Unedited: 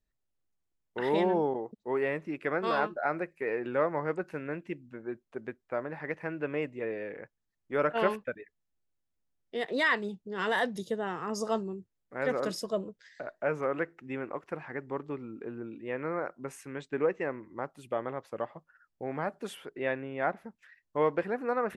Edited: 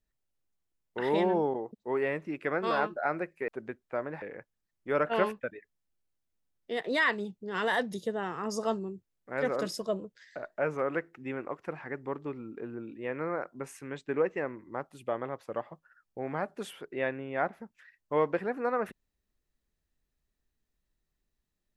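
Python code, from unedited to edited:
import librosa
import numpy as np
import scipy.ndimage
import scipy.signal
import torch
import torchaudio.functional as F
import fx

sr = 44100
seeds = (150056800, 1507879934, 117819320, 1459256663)

y = fx.edit(x, sr, fx.cut(start_s=3.48, length_s=1.79),
    fx.cut(start_s=6.01, length_s=1.05), tone=tone)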